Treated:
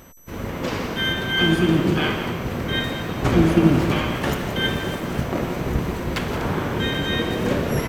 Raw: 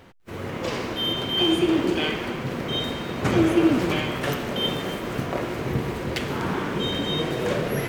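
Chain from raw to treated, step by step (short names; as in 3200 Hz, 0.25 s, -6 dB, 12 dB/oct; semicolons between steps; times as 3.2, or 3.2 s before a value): whine 12000 Hz -54 dBFS; harmoniser -12 st -1 dB, -7 st -8 dB; echo 0.172 s -11.5 dB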